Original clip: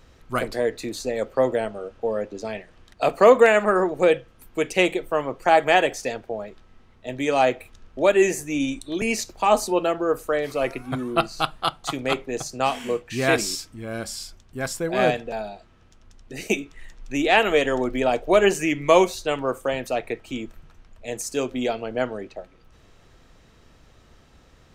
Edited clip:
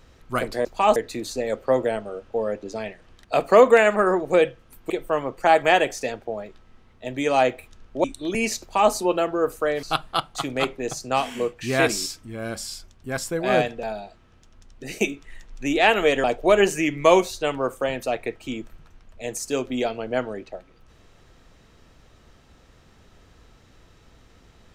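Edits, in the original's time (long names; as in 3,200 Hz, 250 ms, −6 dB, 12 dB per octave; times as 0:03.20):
0:04.59–0:04.92: remove
0:08.06–0:08.71: remove
0:09.28–0:09.59: duplicate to 0:00.65
0:10.50–0:11.32: remove
0:17.73–0:18.08: remove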